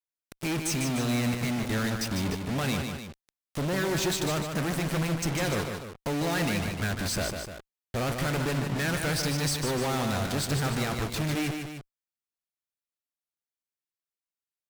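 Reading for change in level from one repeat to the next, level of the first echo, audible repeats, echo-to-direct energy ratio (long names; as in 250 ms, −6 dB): −5.0 dB, −6.0 dB, 2, −5.0 dB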